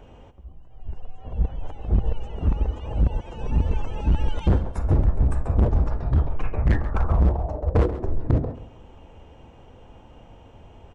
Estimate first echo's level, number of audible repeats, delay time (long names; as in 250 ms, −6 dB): −14.5 dB, 2, 135 ms